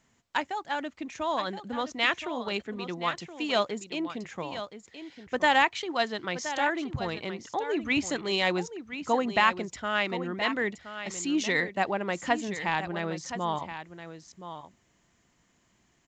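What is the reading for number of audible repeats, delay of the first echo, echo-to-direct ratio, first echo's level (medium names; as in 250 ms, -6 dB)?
1, 1022 ms, -11.0 dB, -11.0 dB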